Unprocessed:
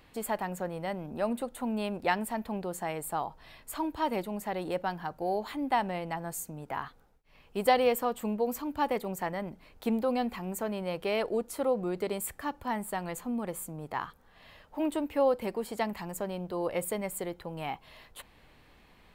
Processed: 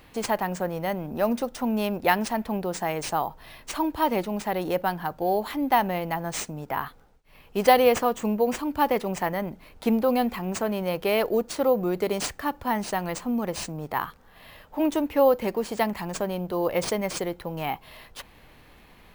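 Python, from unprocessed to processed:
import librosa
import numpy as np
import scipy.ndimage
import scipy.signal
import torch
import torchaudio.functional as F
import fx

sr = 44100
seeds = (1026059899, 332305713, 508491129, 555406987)

y = np.repeat(x[::3], 3)[:len(x)]
y = y * librosa.db_to_amplitude(6.5)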